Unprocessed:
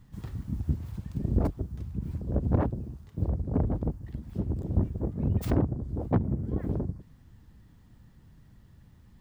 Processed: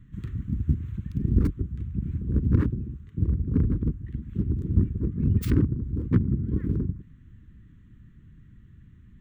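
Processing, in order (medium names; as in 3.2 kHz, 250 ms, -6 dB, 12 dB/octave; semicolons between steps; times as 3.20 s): local Wiener filter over 9 samples; Butterworth band-stop 700 Hz, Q 0.66; trim +4.5 dB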